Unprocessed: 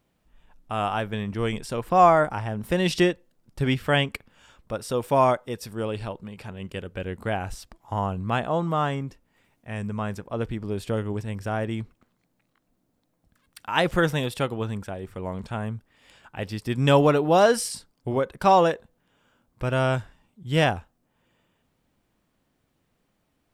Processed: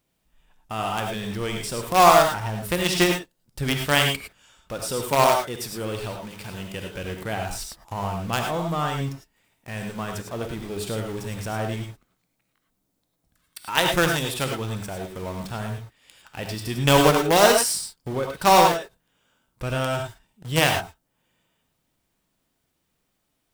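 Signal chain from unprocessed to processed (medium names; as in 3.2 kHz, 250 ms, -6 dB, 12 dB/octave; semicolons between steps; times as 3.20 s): treble shelf 3.1 kHz +10 dB; in parallel at -6.5 dB: companded quantiser 2-bit; on the sum: gated-style reverb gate 130 ms rising, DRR 3 dB; trim -6 dB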